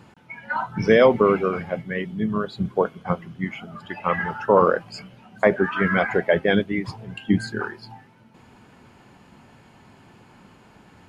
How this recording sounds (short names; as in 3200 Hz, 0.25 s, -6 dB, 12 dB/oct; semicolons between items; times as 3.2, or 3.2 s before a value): noise floor -53 dBFS; spectral tilt -5.0 dB/oct